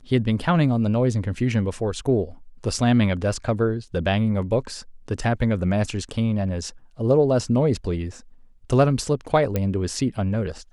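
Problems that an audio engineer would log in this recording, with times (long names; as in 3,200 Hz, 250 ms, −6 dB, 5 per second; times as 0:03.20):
0:09.56: click −10 dBFS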